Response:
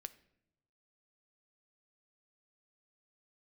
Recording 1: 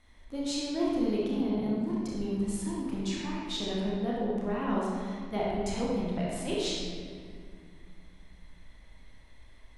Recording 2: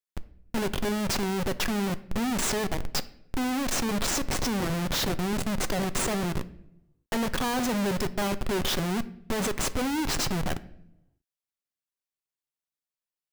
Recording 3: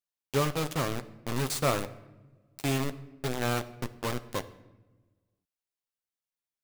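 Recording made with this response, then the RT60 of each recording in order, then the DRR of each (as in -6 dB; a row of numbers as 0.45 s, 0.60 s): 2; 2.1 s, no single decay rate, no single decay rate; -5.5 dB, 12.0 dB, 9.5 dB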